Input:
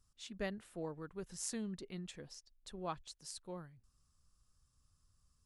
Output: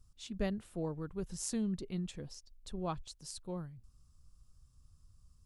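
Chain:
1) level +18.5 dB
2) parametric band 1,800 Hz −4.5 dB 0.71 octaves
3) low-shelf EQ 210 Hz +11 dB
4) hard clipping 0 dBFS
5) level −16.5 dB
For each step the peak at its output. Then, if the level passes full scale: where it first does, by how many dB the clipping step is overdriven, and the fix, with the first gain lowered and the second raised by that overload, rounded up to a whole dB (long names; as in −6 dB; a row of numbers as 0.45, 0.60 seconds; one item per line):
−6.0, −6.0, −5.0, −5.0, −21.5 dBFS
no step passes full scale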